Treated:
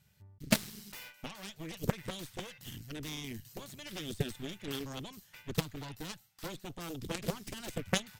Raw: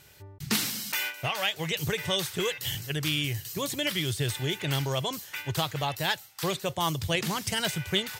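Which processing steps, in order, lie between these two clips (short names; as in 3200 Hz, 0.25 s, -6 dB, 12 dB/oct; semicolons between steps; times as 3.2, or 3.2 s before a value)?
resonant low shelf 250 Hz +7.5 dB, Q 3; added harmonics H 3 -8 dB, 4 -23 dB, 5 -39 dB, 6 -23 dB, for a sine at -7.5 dBFS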